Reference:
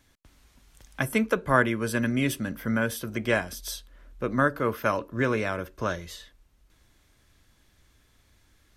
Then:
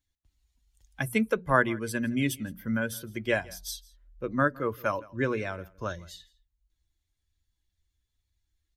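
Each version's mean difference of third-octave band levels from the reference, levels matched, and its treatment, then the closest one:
5.5 dB: spectral dynamics exaggerated over time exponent 1.5
mains-hum notches 60/120/180 Hz
single-tap delay 164 ms −23 dB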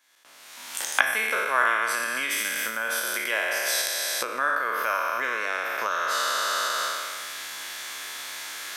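14.0 dB: peak hold with a decay on every bin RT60 1.81 s
camcorder AGC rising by 35 dB per second
high-pass filter 900 Hz 12 dB per octave
level −1.5 dB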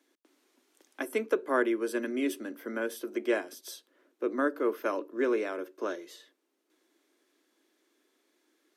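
7.0 dB: Butterworth high-pass 270 Hz 36 dB per octave
parametric band 350 Hz +12 dB 0.99 octaves
level −8.5 dB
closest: first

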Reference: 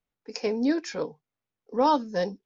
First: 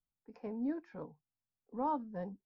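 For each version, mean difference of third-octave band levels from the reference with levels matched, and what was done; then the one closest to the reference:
5.0 dB: Chebyshev low-pass filter 740 Hz, order 2
parametric band 460 Hz −14 dB 1.5 octaves
level −3.5 dB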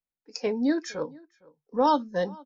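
3.0 dB: noise reduction from a noise print of the clip's start 12 dB
slap from a distant wall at 79 metres, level −24 dB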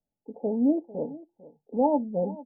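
8.5 dB: Chebyshev low-pass with heavy ripple 880 Hz, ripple 6 dB
on a send: single-tap delay 448 ms −18.5 dB
on the sum: level +3.5 dB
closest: second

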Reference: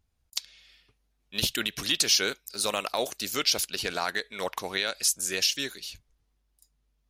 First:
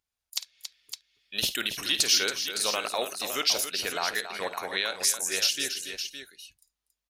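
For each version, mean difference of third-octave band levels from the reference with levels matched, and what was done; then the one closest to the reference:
5.5 dB: low-shelf EQ 240 Hz −11 dB
noise reduction from a noise print of the clip's start 13 dB
on a send: multi-tap delay 52/278/562 ms −13.5/−10/−9.5 dB
on the sum: one half of a high-frequency compander encoder only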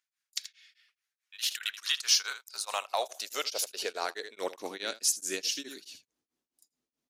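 8.0 dB: parametric band 6,600 Hz +5 dB 1.1 octaves
high-pass filter sweep 1,700 Hz → 280 Hz, 0:01.40–0:04.74
on a send: single-tap delay 81 ms −12.5 dB
on the sum: tremolo along a rectified sine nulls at 4.7 Hz
level −5 dB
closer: first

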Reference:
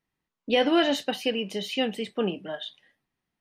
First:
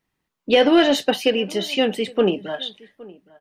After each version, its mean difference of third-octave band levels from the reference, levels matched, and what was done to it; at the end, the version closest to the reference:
2.0 dB: dynamic equaliser 420 Hz, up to +5 dB, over −33 dBFS, Q 0.98
harmonic and percussive parts rebalanced harmonic −4 dB
in parallel at −5 dB: soft clipping −19 dBFS, distortion −14 dB
on the sum: slap from a distant wall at 140 metres, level −22 dB
level +4.5 dB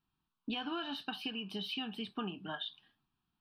5.0 dB: dynamic equaliser 1,400 Hz, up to +6 dB, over −39 dBFS, Q 0.74
phaser with its sweep stopped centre 2,000 Hz, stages 6
downward compressor 10 to 1, threshold −37 dBFS, peak gain reduction 17.5 dB
high-shelf EQ 7,000 Hz −6.5 dB
level +1.5 dB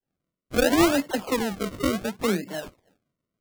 13.5 dB: high-pass filter 120 Hz
spectral tilt −2 dB per octave
all-pass dispersion lows, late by 66 ms, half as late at 1,100 Hz
sample-and-hold swept by an LFO 36×, swing 100% 0.7 Hz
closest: first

